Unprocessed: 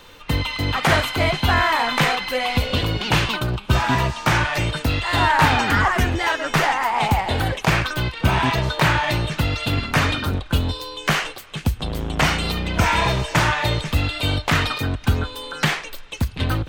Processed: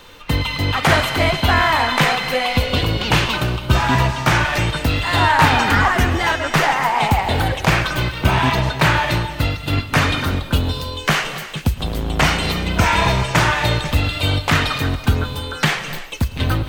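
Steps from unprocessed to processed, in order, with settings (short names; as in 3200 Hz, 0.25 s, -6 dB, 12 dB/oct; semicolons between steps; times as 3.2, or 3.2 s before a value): 8.24–9.93 gate -21 dBFS, range -12 dB; reverb, pre-delay 98 ms, DRR 10.5 dB; gain +2.5 dB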